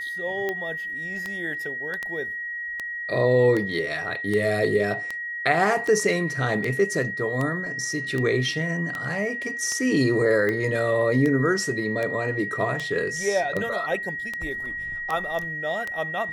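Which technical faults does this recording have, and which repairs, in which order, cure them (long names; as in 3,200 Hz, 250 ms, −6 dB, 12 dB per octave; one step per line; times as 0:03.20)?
scratch tick 78 rpm −15 dBFS
whistle 1,900 Hz −29 dBFS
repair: click removal
notch filter 1,900 Hz, Q 30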